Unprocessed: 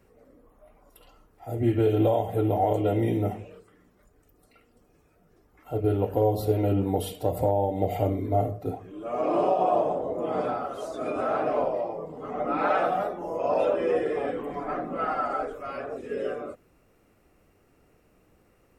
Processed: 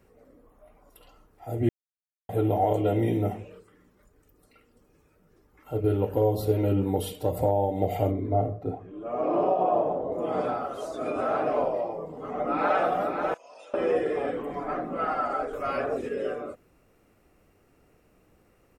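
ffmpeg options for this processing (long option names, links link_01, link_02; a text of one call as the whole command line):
ffmpeg -i in.wav -filter_complex "[0:a]asettb=1/sr,asplit=3[link_01][link_02][link_03];[link_01]atrim=end=3.434[link_04];[link_02]atrim=start=3.43:end=7.38,asetpts=PTS-STARTPTS,afade=type=in:duration=0.004:curve=qsin,afade=type=out:start_time=3.946:duration=0.004:curve=qsin,bandreject=frequency=700:width=7[link_05];[link_03]atrim=start=7.376[link_06];[link_04][link_05]acrossfade=duration=0.004:curve1=hsin:curve2=qsin[link_07];[link_07][link_06]acrossfade=duration=0.004:curve1=qsin:curve2=hsin,asettb=1/sr,asplit=3[link_08][link_09][link_10];[link_08]atrim=end=8.114[link_11];[link_09]atrim=start=8.11:end=10.12,asetpts=PTS-STARTPTS,afade=type=in:duration=0.004:curve=qsin,afade=type=out:start_time=2.006:duration=0.004:curve=qsin,lowpass=frequency=1500:poles=1[link_12];[link_10]atrim=start=10.116[link_13];[link_11][link_12]acrossfade=duration=0.004:curve1=hsin:curve2=qsin[link_14];[link_14][link_13]acrossfade=duration=0.004:curve1=qsin:curve2=hsin,asplit=2[link_15][link_16];[link_16]afade=type=in:start_time=12.25:duration=0.01,afade=type=out:start_time=12.83:duration=0.01,aecho=0:1:540|1080|1620|2160:0.501187|0.150356|0.0451069|0.0135321[link_17];[link_15][link_17]amix=inputs=2:normalize=0,asettb=1/sr,asplit=3[link_18][link_19][link_20];[link_18]atrim=end=13.344[link_21];[link_19]atrim=start=13.34:end=13.74,asetpts=PTS-STARTPTS,afade=type=in:duration=0.004:curve=qsin,afade=type=out:start_time=0.396:duration=0.004:curve=qsin,bandpass=frequency=6800:width_type=q:width=1.6[link_22];[link_20]atrim=start=13.736[link_23];[link_21][link_22]acrossfade=duration=0.004:curve1=hsin:curve2=qsin[link_24];[link_24][link_23]acrossfade=duration=0.004:curve1=qsin:curve2=hsin,asettb=1/sr,asplit=3[link_25][link_26][link_27];[link_25]atrim=end=15.534[link_28];[link_26]atrim=start=15.53:end=16.09,asetpts=PTS-STARTPTS,afade=type=in:duration=0.004:curve=qsin,afade=type=out:start_time=0.556:duration=0.004:curve=qsin,acontrast=54[link_29];[link_27]atrim=start=16.086[link_30];[link_28][link_29]acrossfade=duration=0.004:curve1=hsin:curve2=qsin[link_31];[link_31][link_30]acrossfade=duration=0.004:curve1=qsin:curve2=hsin,asplit=3[link_32][link_33][link_34];[link_32]atrim=end=1.69,asetpts=PTS-STARTPTS,afade=type=out:start_time=1.686:duration=0.004:curve=hsin[link_35];[link_33]atrim=start=1.69:end=2.29,asetpts=PTS-STARTPTS,volume=0[link_36];[link_34]atrim=start=2.29,asetpts=PTS-STARTPTS,afade=type=in:duration=0.004:curve=hsin[link_37];[link_35][link_36][link_37]concat=n=3:v=0:a=1" out.wav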